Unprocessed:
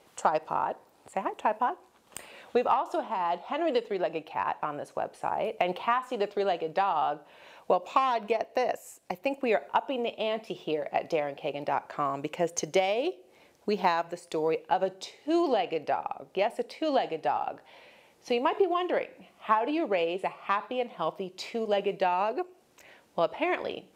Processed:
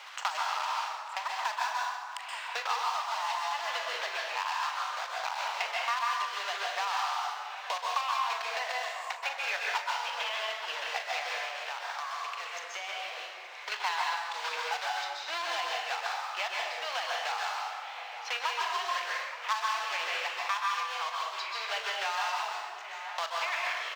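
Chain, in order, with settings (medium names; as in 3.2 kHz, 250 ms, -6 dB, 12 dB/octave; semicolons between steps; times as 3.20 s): block-companded coder 3-bit; high-pass 1 kHz 24 dB/octave; treble shelf 3.5 kHz +10 dB; 11.45–13.72 s: compression, threshold -37 dBFS, peak gain reduction 17.5 dB; distance through air 200 m; doubling 40 ms -11.5 dB; echo from a far wall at 150 m, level -19 dB; plate-style reverb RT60 1.1 s, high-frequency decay 0.7×, pre-delay 115 ms, DRR -2.5 dB; three bands compressed up and down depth 70%; trim -2 dB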